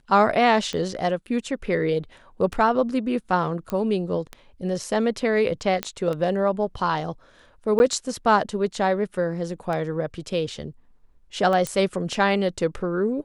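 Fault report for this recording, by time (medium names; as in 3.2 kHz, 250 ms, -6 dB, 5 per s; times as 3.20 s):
tick 33 1/3 rpm -17 dBFS
3.70 s: pop -15 dBFS
5.83 s: pop -10 dBFS
7.79–7.80 s: dropout 11 ms
11.67 s: pop -12 dBFS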